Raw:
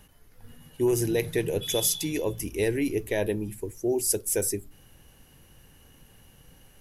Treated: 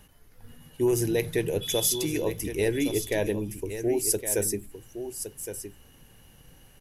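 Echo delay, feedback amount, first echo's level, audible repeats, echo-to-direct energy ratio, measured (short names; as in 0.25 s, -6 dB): 1.115 s, no steady repeat, -10.0 dB, 1, -10.0 dB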